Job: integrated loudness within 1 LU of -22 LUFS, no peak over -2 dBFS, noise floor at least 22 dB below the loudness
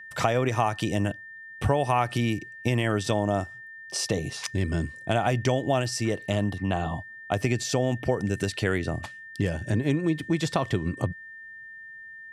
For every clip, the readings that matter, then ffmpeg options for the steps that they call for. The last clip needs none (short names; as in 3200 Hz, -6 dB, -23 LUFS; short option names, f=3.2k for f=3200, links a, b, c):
steady tone 1800 Hz; tone level -41 dBFS; loudness -27.5 LUFS; peak -8.0 dBFS; loudness target -22.0 LUFS
-> -af "bandreject=f=1.8k:w=30"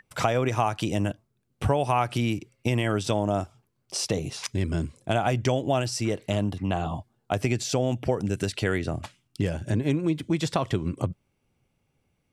steady tone none; loudness -27.5 LUFS; peak -8.0 dBFS; loudness target -22.0 LUFS
-> -af "volume=5.5dB"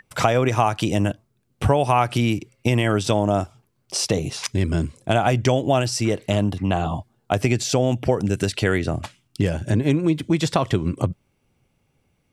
loudness -22.0 LUFS; peak -2.5 dBFS; noise floor -69 dBFS